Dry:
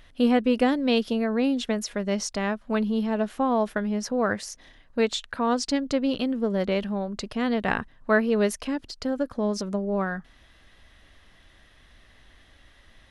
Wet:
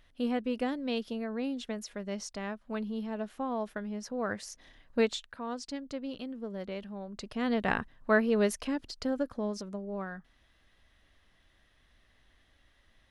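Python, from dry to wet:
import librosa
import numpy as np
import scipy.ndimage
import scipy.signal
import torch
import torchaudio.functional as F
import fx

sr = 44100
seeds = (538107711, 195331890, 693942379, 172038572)

y = fx.gain(x, sr, db=fx.line((4.07, -10.5), (4.99, -2.5), (5.35, -13.5), (6.92, -13.5), (7.53, -4.0), (9.15, -4.0), (9.71, -11.0)))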